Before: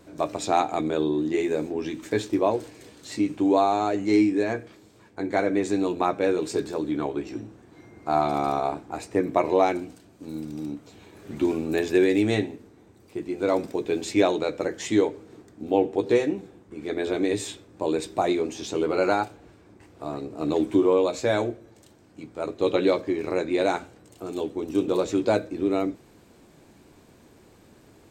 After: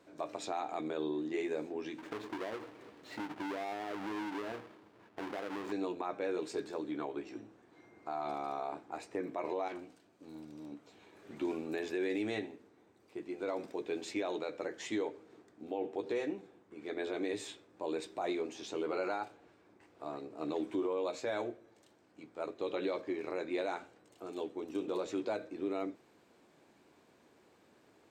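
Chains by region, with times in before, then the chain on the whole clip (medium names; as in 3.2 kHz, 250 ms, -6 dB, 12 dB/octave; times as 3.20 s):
1.98–5.72 s: square wave that keeps the level + treble shelf 4 kHz -12 dB + compression 16:1, threshold -26 dBFS
9.68–10.72 s: high-pass 52 Hz + valve stage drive 28 dB, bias 0.45
whole clip: high-pass 470 Hz 6 dB/octave; treble shelf 5.9 kHz -11 dB; peak limiter -20 dBFS; trim -6.5 dB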